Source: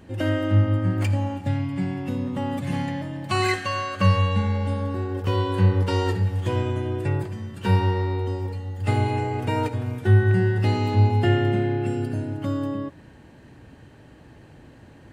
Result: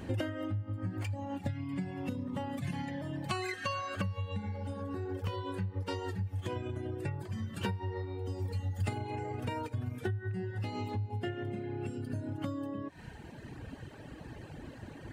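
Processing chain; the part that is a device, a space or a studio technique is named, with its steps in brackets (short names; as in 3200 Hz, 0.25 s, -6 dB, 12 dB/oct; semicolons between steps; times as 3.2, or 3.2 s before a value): serial compression, leveller first (compressor 2.5:1, threshold -24 dBFS, peak gain reduction 8.5 dB; compressor 8:1, threshold -35 dBFS, peak gain reduction 15 dB); reverb removal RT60 1.4 s; 8.25–8.95 tone controls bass +3 dB, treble +5 dB; gain +4.5 dB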